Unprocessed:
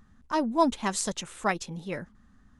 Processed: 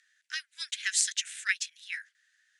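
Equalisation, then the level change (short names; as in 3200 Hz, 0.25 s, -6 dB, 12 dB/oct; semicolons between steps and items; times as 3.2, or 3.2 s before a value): steep high-pass 1600 Hz 72 dB/oct; LPF 10000 Hz 24 dB/oct; +5.5 dB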